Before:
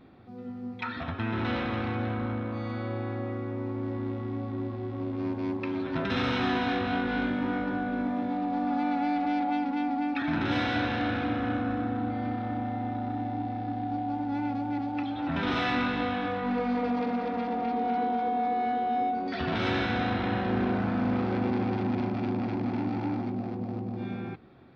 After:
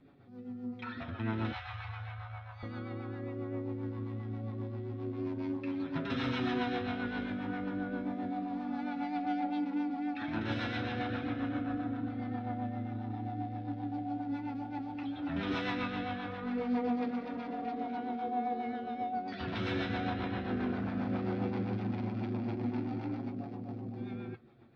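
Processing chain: 1.52–2.63 elliptic band-stop 100–750 Hz, stop band 50 dB; flange 0.17 Hz, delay 6.9 ms, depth 4.8 ms, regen +34%; rotary speaker horn 7.5 Hz; gain -1 dB

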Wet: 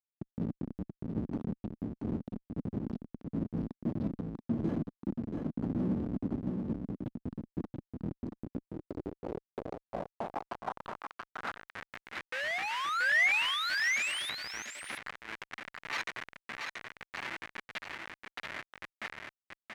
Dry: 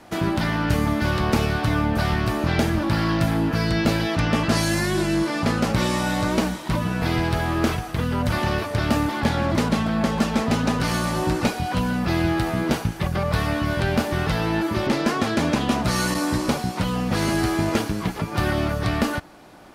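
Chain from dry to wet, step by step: random spectral dropouts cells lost 68%; reverse; upward compressor, threshold -28 dBFS; reverse; band shelf 5200 Hz +11 dB; painted sound rise, 12.32–14.3, 490–11000 Hz -17 dBFS; Schmitt trigger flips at -18.5 dBFS; on a send: echo 0.681 s -4.5 dB; on the sum: band-pass sweep 240 Hz -> 2000 Hz, 8.35–12

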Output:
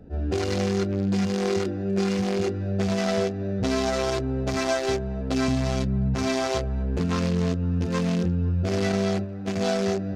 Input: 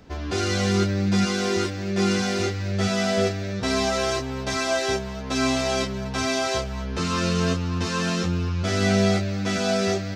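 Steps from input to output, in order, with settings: Wiener smoothing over 41 samples; 5.48–6.15 resonant low shelf 250 Hz +8.5 dB, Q 1.5; notches 50/100/150/200/250/300/350 Hz; 8.92–9.62 gate -27 dBFS, range -8 dB; compressor, threshold -26 dBFS, peak gain reduction 8 dB; on a send: band-limited delay 0.255 s, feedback 72%, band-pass 940 Hz, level -22.5 dB; on the sum: attack slew limiter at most 310 dB/s; gain +5.5 dB

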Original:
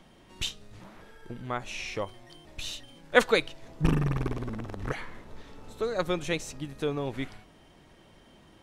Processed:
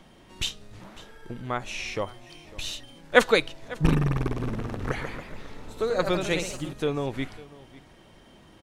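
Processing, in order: echo 0.549 s -20 dB; 4.26–6.73 echoes that change speed 0.176 s, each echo +1 st, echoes 3, each echo -6 dB; gain +3 dB

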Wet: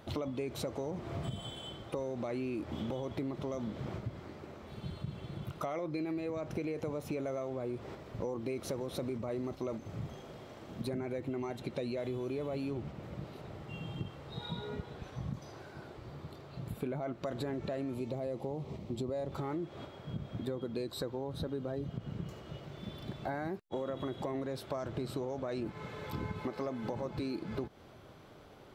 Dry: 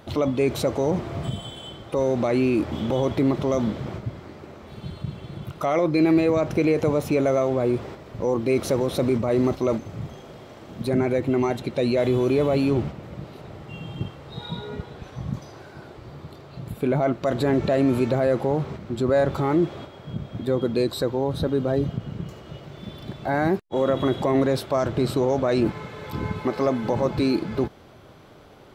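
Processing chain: 17.94–19.32 bell 1500 Hz -14.5 dB 0.59 oct; compressor 10:1, threshold -27 dBFS, peak gain reduction 13 dB; gain -6.5 dB

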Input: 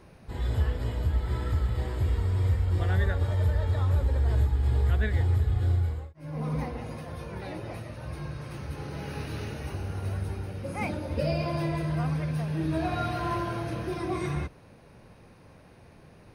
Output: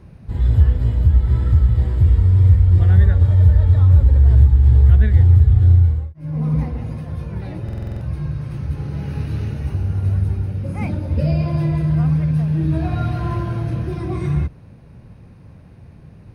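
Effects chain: HPF 41 Hz 6 dB/oct; tone controls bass +15 dB, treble -3 dB; stuck buffer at 7.64, samples 2048, times 7

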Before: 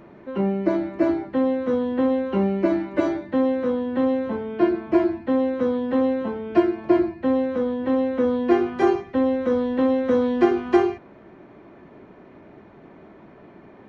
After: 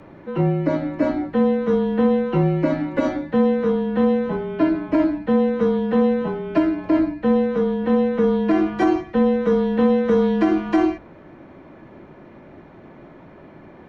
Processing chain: frequency shift -36 Hz; notches 60/120/180/240/300 Hz; maximiser +11 dB; gain -7.5 dB

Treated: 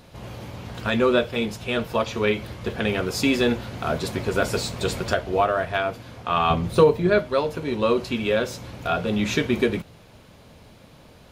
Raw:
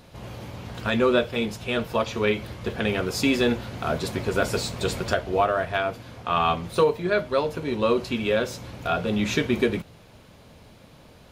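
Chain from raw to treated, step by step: 6.5–7.19 low shelf 380 Hz +8.5 dB; gain +1 dB

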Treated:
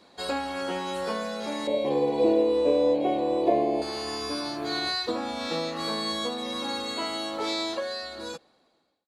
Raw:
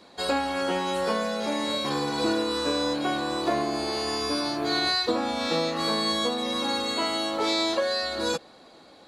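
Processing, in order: ending faded out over 1.55 s; 1.67–3.82 EQ curve 130 Hz 0 dB, 280 Hz +4 dB, 520 Hz +13 dB, 940 Hz +1 dB, 1400 Hz -18 dB, 2200 Hz 0 dB, 3200 Hz -3 dB, 5200 Hz -15 dB, 9100 Hz -11 dB; gain -4 dB

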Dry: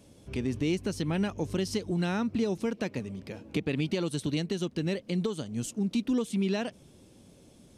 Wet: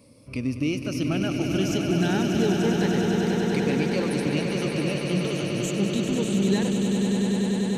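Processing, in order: moving spectral ripple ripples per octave 0.95, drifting +0.27 Hz, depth 13 dB; swelling echo 98 ms, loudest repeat 8, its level -8 dB

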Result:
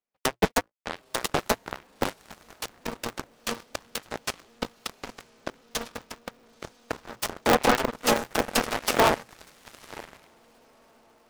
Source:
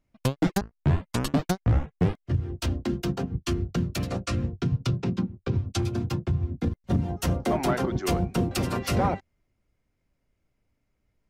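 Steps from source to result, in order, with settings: steep high-pass 320 Hz 48 dB/oct; diffused feedback echo 0.963 s, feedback 43%, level -7 dB; added harmonics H 2 -25 dB, 4 -34 dB, 7 -16 dB, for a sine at -14 dBFS; polarity switched at an audio rate 120 Hz; gain +6.5 dB

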